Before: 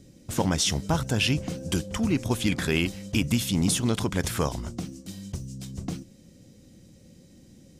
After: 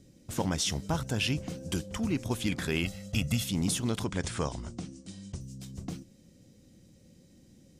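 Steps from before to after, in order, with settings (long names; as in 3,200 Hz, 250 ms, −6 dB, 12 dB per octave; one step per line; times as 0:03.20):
0:02.83–0:03.44: comb filter 1.5 ms, depth 70%
0:04.04–0:05.41: Butterworth low-pass 9,900 Hz 96 dB per octave
level −5.5 dB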